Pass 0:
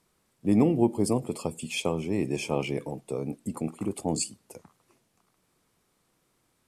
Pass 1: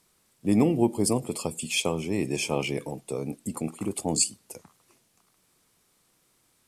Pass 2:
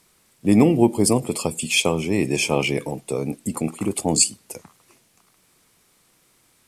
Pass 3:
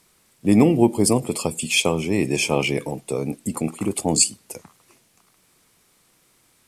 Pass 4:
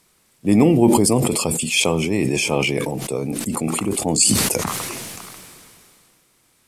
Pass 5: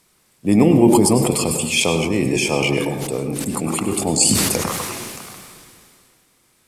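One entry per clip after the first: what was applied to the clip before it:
high-shelf EQ 2,400 Hz +8 dB
parametric band 2,200 Hz +2.5 dB; level +6.5 dB
no processing that can be heard
level that may fall only so fast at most 23 dB per second
convolution reverb RT60 0.80 s, pre-delay 93 ms, DRR 6 dB

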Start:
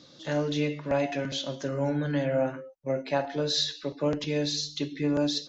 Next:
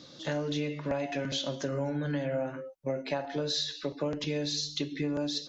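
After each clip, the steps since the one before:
downward compressor, threshold −31 dBFS, peak gain reduction 10 dB
level +2.5 dB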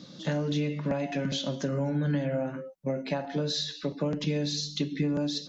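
parametric band 190 Hz +14.5 dB 0.62 octaves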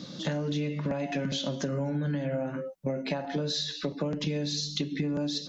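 downward compressor 3 to 1, threshold −35 dBFS, peak gain reduction 9 dB
level +5.5 dB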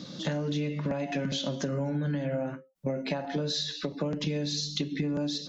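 every ending faded ahead of time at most 210 dB per second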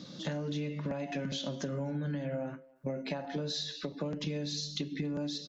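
far-end echo of a speakerphone 280 ms, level −25 dB
level −5 dB

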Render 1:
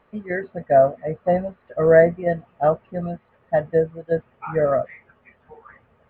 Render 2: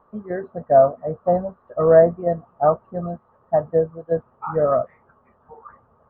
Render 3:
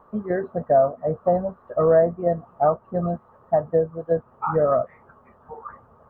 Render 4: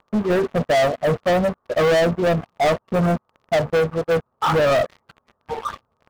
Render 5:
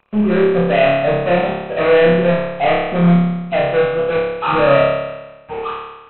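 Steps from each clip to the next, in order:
high shelf with overshoot 1,600 Hz −11.5 dB, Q 3; level −1 dB
downward compressor 2 to 1, threshold −26 dBFS, peak gain reduction 10.5 dB; level +5 dB
leveller curve on the samples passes 5; level −7 dB
hearing-aid frequency compression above 2,300 Hz 4 to 1; flutter between parallel walls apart 4.9 metres, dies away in 1.1 s; level −1 dB

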